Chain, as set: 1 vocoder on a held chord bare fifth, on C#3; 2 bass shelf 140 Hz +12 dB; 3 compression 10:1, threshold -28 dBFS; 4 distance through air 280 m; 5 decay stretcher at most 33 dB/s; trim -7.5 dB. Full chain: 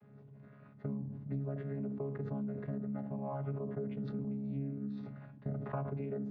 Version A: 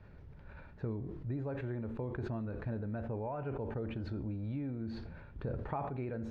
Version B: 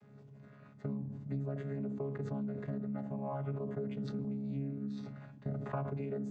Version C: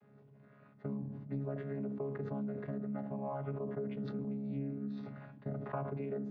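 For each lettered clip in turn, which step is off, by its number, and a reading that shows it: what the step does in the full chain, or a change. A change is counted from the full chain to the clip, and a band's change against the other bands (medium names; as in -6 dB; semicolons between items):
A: 1, 2 kHz band +6.0 dB; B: 4, 2 kHz band +1.5 dB; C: 2, 125 Hz band -4.0 dB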